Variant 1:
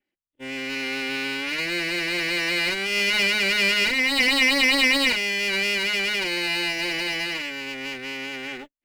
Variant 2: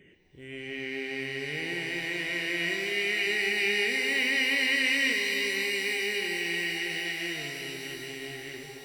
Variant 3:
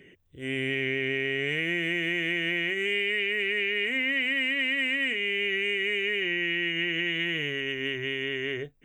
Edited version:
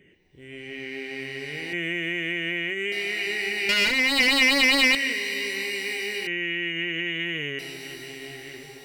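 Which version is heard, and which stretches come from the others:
2
1.73–2.92 s: from 3
3.69–4.95 s: from 1
6.27–7.59 s: from 3

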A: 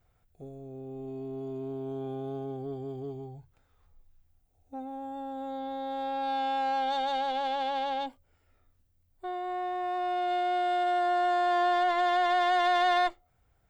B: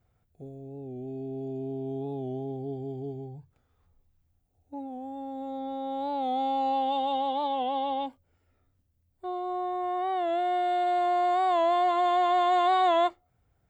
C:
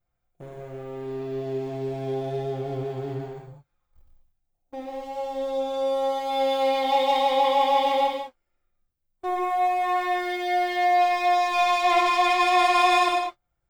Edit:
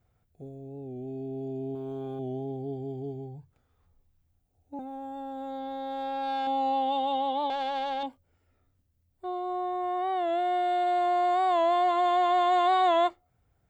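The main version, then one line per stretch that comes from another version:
B
1.75–2.19 s: from A
4.79–6.47 s: from A
7.50–8.03 s: from A
not used: C

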